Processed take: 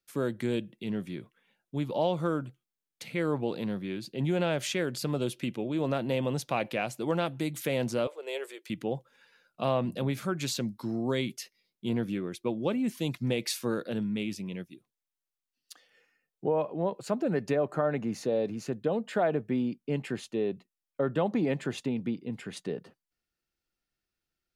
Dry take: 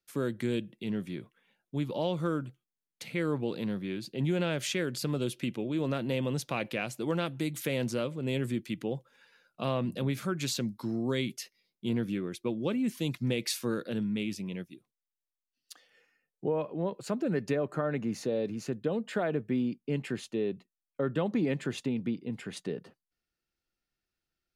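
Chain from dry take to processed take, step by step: 8.07–8.70 s: elliptic high-pass 410 Hz, stop band 50 dB; dynamic bell 750 Hz, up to +7 dB, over -45 dBFS, Q 1.5

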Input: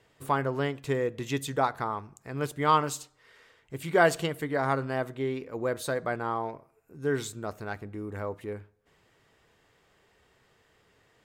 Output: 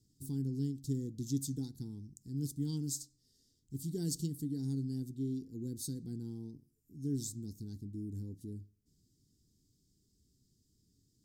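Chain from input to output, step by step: elliptic band-stop 280–5000 Hz, stop band 40 dB; trim -1 dB

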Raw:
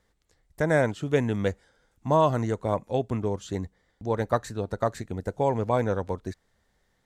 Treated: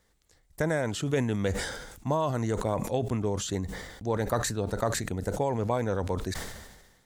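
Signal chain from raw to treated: compression, threshold -24 dBFS, peak gain reduction 8 dB; treble shelf 4.8 kHz +7.5 dB; decay stretcher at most 48 dB/s

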